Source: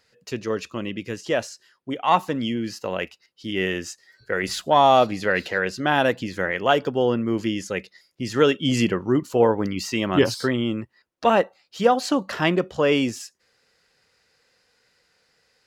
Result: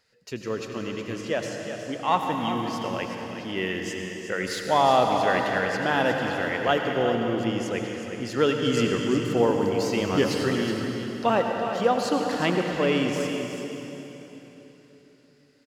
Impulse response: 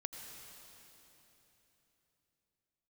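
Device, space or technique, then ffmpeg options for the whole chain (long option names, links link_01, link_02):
cave: -filter_complex "[0:a]aecho=1:1:366:0.335[link_01];[1:a]atrim=start_sample=2205[link_02];[link_01][link_02]afir=irnorm=-1:irlink=0,volume=-1dB"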